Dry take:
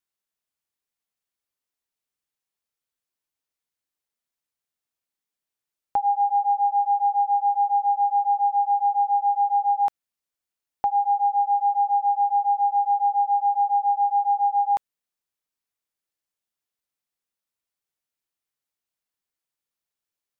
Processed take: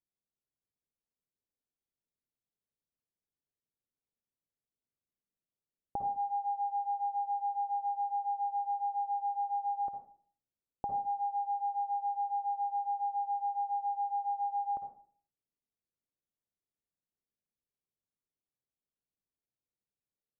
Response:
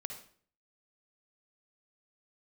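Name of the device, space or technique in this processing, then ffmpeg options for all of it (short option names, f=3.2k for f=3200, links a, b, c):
television next door: -filter_complex "[0:a]acompressor=threshold=-21dB:ratio=6,lowpass=430[a];[1:a]atrim=start_sample=2205[b];[a][b]afir=irnorm=-1:irlink=0,volume=2.5dB"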